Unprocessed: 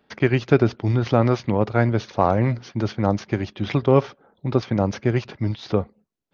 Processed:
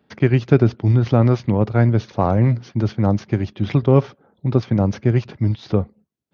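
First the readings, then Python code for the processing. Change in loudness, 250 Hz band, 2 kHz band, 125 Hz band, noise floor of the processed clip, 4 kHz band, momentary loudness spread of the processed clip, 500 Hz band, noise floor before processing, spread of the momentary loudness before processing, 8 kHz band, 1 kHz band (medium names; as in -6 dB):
+3.0 dB, +3.5 dB, -2.5 dB, +6.0 dB, -65 dBFS, -2.5 dB, 7 LU, +0.5 dB, -67 dBFS, 9 LU, no reading, -1.5 dB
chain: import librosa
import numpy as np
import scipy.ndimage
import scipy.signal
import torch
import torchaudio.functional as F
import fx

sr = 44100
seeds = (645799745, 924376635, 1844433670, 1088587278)

y = scipy.signal.sosfilt(scipy.signal.butter(2, 74.0, 'highpass', fs=sr, output='sos'), x)
y = fx.low_shelf(y, sr, hz=260.0, db=11.0)
y = y * 10.0 ** (-2.5 / 20.0)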